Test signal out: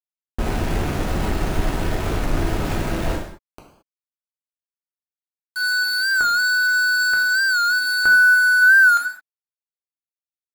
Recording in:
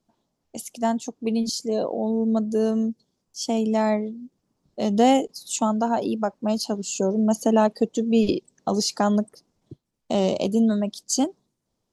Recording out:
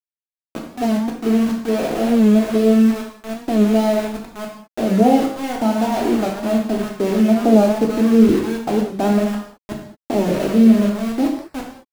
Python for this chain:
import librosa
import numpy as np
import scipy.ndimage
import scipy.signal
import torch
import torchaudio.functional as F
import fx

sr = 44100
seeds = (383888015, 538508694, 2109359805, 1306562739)

y = fx.reverse_delay(x, sr, ms=278, wet_db=-12.5)
y = fx.recorder_agc(y, sr, target_db=-15.0, rise_db_per_s=8.4, max_gain_db=30)
y = scipy.signal.sosfilt(scipy.signal.butter(2, 1700.0, 'lowpass', fs=sr, output='sos'), y)
y = fx.tilt_shelf(y, sr, db=5.0, hz=970.0)
y = fx.notch(y, sr, hz=1100.0, q=6.1)
y = np.where(np.abs(y) >= 10.0 ** (-24.5 / 20.0), y, 0.0)
y = fx.rev_gated(y, sr, seeds[0], gate_ms=240, shape='falling', drr_db=-1.5)
y = fx.record_warp(y, sr, rpm=45.0, depth_cents=100.0)
y = y * librosa.db_to_amplitude(-1.5)